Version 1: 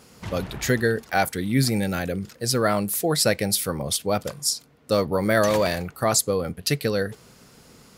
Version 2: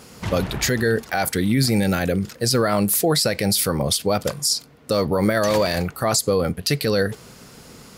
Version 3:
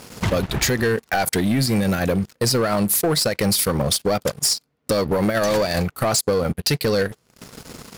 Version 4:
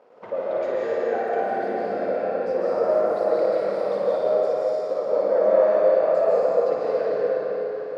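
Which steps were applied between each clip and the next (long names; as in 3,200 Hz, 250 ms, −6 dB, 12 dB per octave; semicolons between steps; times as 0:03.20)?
dynamic equaliser 4,700 Hz, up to +5 dB, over −43 dBFS, Q 4.4; brickwall limiter −16.5 dBFS, peak gain reduction 10.5 dB; level +7 dB
transient designer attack +3 dB, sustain −11 dB; downward compressor 3 to 1, threshold −21 dBFS, peak gain reduction 6 dB; leveller curve on the samples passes 3; level −4.5 dB
four-pole ladder band-pass 620 Hz, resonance 50%; on a send: flutter between parallel walls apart 9.7 metres, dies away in 0.71 s; on the sum: comb and all-pass reverb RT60 4.4 s, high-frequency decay 0.85×, pre-delay 105 ms, DRR −7.5 dB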